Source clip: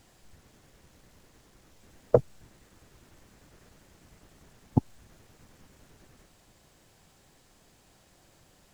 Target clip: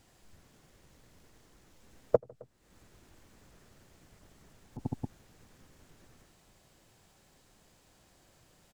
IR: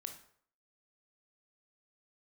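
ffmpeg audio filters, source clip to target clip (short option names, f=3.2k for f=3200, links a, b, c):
-filter_complex "[0:a]aecho=1:1:83|152|265:0.355|0.299|0.282,asplit=3[a][b][c];[a]afade=t=out:st=2.15:d=0.02[d];[b]acompressor=threshold=-43dB:ratio=5,afade=t=in:st=2.15:d=0.02,afade=t=out:st=4.78:d=0.02[e];[c]afade=t=in:st=4.78:d=0.02[f];[d][e][f]amix=inputs=3:normalize=0,volume=-4dB"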